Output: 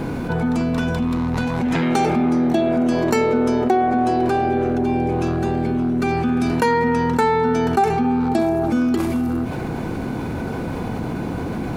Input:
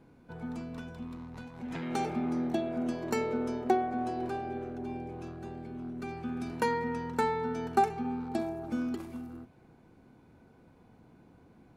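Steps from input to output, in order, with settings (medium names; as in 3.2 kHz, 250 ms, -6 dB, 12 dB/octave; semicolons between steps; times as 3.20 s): level flattener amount 70%; trim +6.5 dB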